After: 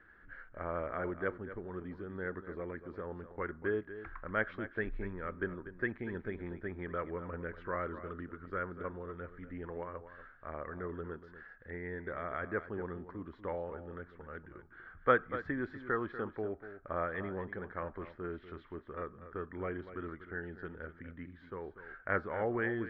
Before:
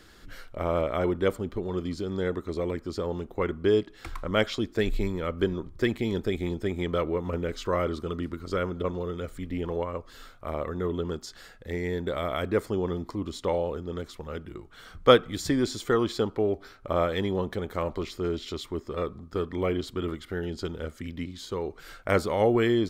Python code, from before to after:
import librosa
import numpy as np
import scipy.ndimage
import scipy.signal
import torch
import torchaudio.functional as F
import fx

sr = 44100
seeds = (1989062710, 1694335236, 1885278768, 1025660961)

p1 = fx.ladder_lowpass(x, sr, hz=1800.0, resonance_pct=70)
p2 = p1 + fx.echo_single(p1, sr, ms=241, db=-12.5, dry=0)
y = p2 * 10.0 ** (-1.0 / 20.0)